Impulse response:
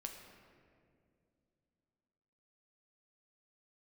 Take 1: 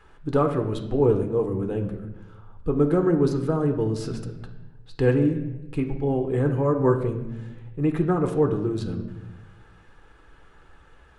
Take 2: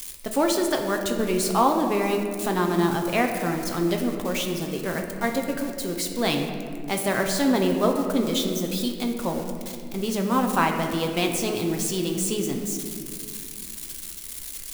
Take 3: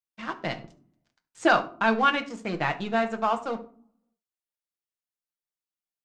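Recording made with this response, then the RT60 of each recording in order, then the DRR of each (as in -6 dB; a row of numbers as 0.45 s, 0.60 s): 2; 1.1 s, 2.4 s, 0.50 s; 4.5 dB, 2.5 dB, 5.0 dB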